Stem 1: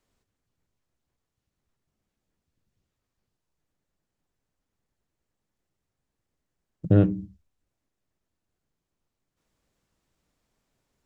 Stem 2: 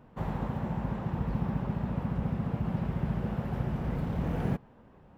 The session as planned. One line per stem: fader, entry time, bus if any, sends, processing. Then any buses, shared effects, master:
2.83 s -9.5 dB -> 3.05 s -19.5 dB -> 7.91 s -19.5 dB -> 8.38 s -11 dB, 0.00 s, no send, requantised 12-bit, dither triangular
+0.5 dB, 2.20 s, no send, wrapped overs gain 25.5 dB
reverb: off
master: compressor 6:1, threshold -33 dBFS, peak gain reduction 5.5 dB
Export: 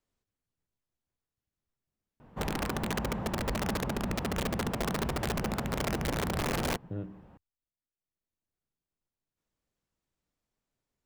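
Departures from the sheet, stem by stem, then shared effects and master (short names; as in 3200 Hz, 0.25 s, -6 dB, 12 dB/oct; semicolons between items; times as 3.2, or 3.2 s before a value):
stem 1: missing requantised 12-bit, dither triangular; master: missing compressor 6:1, threshold -33 dBFS, peak gain reduction 5.5 dB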